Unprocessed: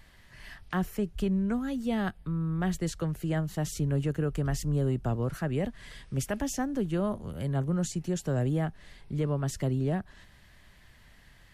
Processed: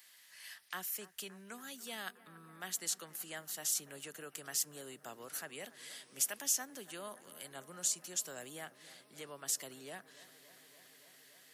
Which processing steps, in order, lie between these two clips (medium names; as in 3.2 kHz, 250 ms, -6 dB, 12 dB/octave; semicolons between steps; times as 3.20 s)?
high-pass 190 Hz 12 dB/octave; differentiator; on a send: bucket-brigade echo 285 ms, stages 4096, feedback 84%, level -18 dB; on the sum: trim +6.5 dB